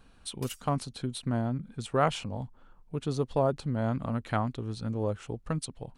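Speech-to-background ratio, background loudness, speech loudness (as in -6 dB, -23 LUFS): 16.5 dB, -48.5 LUFS, -32.0 LUFS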